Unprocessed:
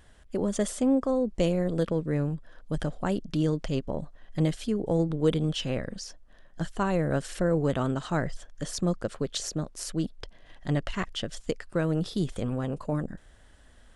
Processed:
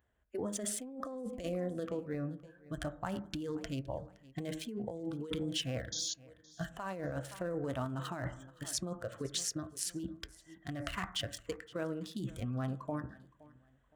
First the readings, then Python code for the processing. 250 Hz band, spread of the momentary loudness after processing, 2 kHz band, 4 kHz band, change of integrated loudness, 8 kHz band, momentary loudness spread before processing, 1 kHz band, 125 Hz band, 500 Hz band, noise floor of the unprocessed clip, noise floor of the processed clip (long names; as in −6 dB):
−11.5 dB, 8 LU, −7.0 dB, −3.0 dB, −10.0 dB, −1.0 dB, 11 LU, −8.0 dB, −11.5 dB, −11.0 dB, −54 dBFS, −67 dBFS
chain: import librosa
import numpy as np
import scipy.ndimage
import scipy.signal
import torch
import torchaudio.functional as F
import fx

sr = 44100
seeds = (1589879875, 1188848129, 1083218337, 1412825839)

y = fx.wiener(x, sr, points=9)
y = fx.noise_reduce_blind(y, sr, reduce_db=14)
y = scipy.signal.sosfilt(scipy.signal.butter(4, 44.0, 'highpass', fs=sr, output='sos'), y)
y = fx.spec_paint(y, sr, seeds[0], shape='noise', start_s=5.92, length_s=0.22, low_hz=3200.0, high_hz=7100.0, level_db=-36.0)
y = fx.tremolo_random(y, sr, seeds[1], hz=1.4, depth_pct=55)
y = fx.peak_eq(y, sr, hz=150.0, db=-9.5, octaves=0.36)
y = fx.echo_feedback(y, sr, ms=517, feedback_pct=34, wet_db=-23)
y = fx.rev_fdn(y, sr, rt60_s=0.57, lf_ratio=1.0, hf_ratio=0.25, size_ms=45.0, drr_db=10.5)
y = fx.over_compress(y, sr, threshold_db=-34.0, ratio=-1.0)
y = fx.high_shelf(y, sr, hz=9400.0, db=11.5)
y = F.gain(torch.from_numpy(y), -3.5).numpy()